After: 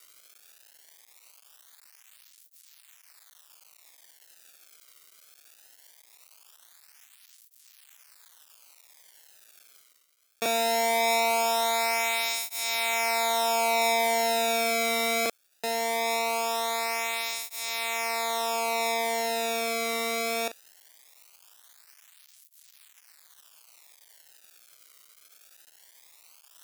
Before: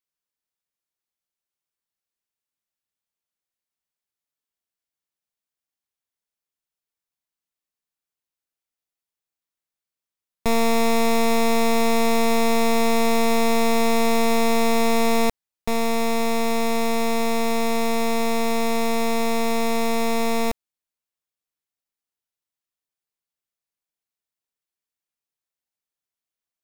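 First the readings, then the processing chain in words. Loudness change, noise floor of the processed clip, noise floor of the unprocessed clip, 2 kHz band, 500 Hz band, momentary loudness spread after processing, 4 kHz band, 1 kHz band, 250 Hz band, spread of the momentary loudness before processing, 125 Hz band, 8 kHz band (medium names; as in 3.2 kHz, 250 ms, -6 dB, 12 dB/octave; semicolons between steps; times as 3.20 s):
-4.5 dB, -61 dBFS, under -85 dBFS, -1.0 dB, -6.5 dB, 6 LU, 0.0 dB, -3.5 dB, -18.5 dB, 3 LU, no reading, 0.0 dB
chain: companding laws mixed up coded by mu; in parallel at -3 dB: hard clipper -30 dBFS, distortion -16 dB; on the sum: reverse echo 38 ms -15.5 dB; integer overflow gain 24.5 dB; reverse; upward compressor, threshold -50 dBFS; reverse; high-pass 1.1 kHz 6 dB/octave; loudness maximiser +25 dB; cancelling through-zero flanger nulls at 0.2 Hz, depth 1.2 ms; trim -9 dB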